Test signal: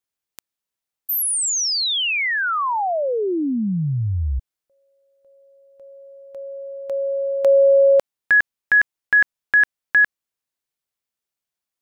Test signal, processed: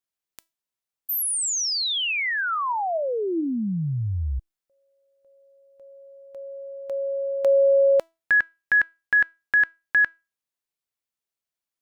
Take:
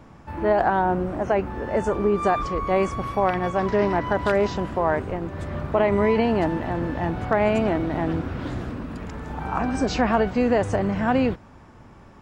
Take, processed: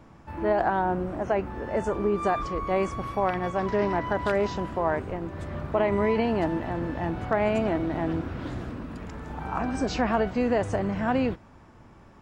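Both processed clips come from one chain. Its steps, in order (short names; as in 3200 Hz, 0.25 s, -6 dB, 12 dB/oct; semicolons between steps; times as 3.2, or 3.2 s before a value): resonator 330 Hz, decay 0.28 s, harmonics all, mix 40%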